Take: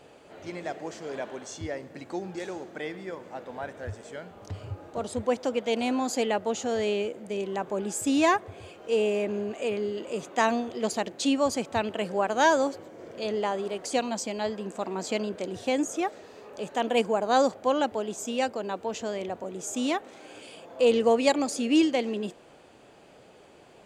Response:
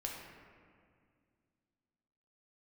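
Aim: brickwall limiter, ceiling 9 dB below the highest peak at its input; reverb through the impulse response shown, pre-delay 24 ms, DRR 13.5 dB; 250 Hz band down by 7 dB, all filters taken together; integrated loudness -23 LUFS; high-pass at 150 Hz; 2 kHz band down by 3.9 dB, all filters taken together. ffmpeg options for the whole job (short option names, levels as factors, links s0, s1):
-filter_complex "[0:a]highpass=150,equalizer=f=250:t=o:g=-8,equalizer=f=2000:t=o:g=-5,alimiter=limit=0.112:level=0:latency=1,asplit=2[s0][s1];[1:a]atrim=start_sample=2205,adelay=24[s2];[s1][s2]afir=irnorm=-1:irlink=0,volume=0.211[s3];[s0][s3]amix=inputs=2:normalize=0,volume=2.99"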